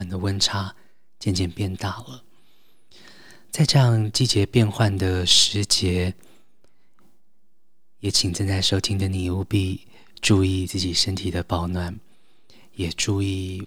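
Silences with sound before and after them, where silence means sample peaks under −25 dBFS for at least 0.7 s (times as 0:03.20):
0:02.00–0:03.54
0:06.11–0:08.04
0:11.92–0:12.79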